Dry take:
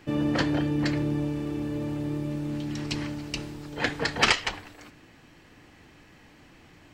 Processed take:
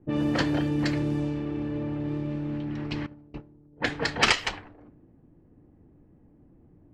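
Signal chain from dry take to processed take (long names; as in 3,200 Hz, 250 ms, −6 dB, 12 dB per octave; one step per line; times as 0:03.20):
0:03.06–0:03.82: noise gate −31 dBFS, range −15 dB
low-pass that shuts in the quiet parts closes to 330 Hz, open at −22 dBFS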